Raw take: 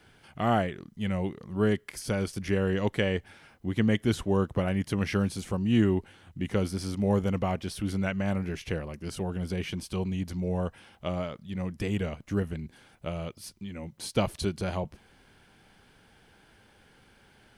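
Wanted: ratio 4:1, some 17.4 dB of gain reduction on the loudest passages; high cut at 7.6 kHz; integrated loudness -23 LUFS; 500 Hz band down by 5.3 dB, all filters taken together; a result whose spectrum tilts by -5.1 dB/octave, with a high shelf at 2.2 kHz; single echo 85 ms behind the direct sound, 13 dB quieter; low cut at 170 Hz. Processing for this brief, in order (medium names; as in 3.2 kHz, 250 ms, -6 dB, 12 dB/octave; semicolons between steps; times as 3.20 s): high-pass 170 Hz; low-pass 7.6 kHz; peaking EQ 500 Hz -6.5 dB; treble shelf 2.2 kHz -3.5 dB; compression 4:1, threshold -44 dBFS; delay 85 ms -13 dB; trim +24 dB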